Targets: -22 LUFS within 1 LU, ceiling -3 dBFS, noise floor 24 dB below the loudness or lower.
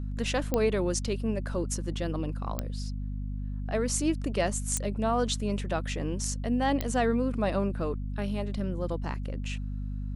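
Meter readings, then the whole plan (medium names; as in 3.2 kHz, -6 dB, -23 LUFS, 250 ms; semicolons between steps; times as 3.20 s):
clicks found 4; hum 50 Hz; highest harmonic 250 Hz; hum level -31 dBFS; loudness -30.5 LUFS; peak level -12.5 dBFS; loudness target -22.0 LUFS
-> de-click; de-hum 50 Hz, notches 5; trim +8.5 dB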